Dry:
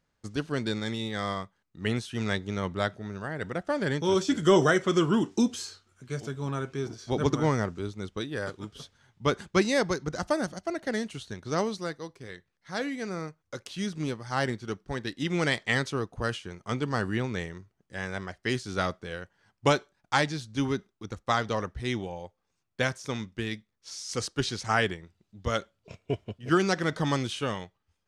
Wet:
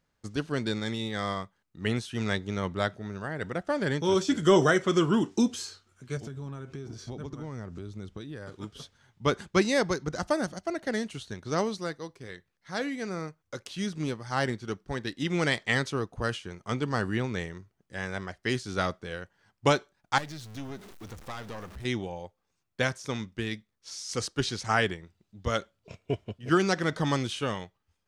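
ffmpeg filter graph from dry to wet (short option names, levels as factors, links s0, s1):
-filter_complex "[0:a]asettb=1/sr,asplit=3[s0][s1][s2];[s0]atrim=end=6.174[s3];[s1]atrim=start=6.17:end=8.52,asetpts=PTS-STARTPTS,afade=t=in:d=0.004:c=qsin,afade=t=out:st=2.346:d=0.004:c=qsin,acompressor=threshold=0.01:ratio=6:attack=3.2:release=140:knee=1:detection=peak,lowshelf=f=270:g=8[s4];[s2]atrim=start=8.516[s5];[s3][s4]acrossfade=d=0.004:c1=hsin:c2=qsin[s6];[s6][s5]acrossfade=d=0.004:c1=qsin:c2=hsin,asettb=1/sr,asplit=3[s7][s8][s9];[s7]atrim=end=20.184[s10];[s8]atrim=start=20.18:end=21.85,asetpts=PTS-STARTPTS,afade=t=in:d=0.004:c=qsin,afade=t=out:st=1.666:d=0.004:c=qsin,aeval=exprs='val(0)+0.5*0.0133*sgn(val(0))':c=same,aeval=exprs='(tanh(14.1*val(0)+0.8)-tanh(0.8))/14.1':c=same,acompressor=threshold=0.0112:ratio=2:attack=3.2:release=140:knee=1:detection=peak[s11];[s9]atrim=start=21.846[s12];[s10][s11]acrossfade=d=0.004:c1=hsin:c2=qsin[s13];[s13][s12]acrossfade=d=0.004:c1=qsin:c2=hsin"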